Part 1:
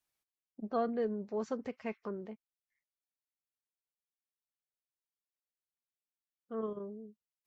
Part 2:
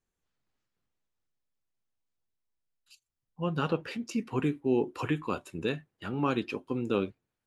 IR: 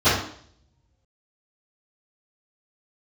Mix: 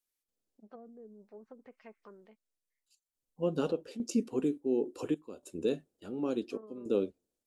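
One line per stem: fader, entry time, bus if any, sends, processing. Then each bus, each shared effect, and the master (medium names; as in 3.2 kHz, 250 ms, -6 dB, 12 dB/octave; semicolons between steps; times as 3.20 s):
-9.5 dB, 0.00 s, no send, low-pass that closes with the level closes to 350 Hz, closed at -31 dBFS; tilt EQ +3 dB/octave
-1.0 dB, 0.00 s, no send, ten-band graphic EQ 125 Hz -11 dB, 250 Hz +5 dB, 500 Hz +8 dB, 1 kHz -7 dB, 2 kHz -12 dB, 8 kHz +7 dB; random-step tremolo 3.5 Hz, depth 85%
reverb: none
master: none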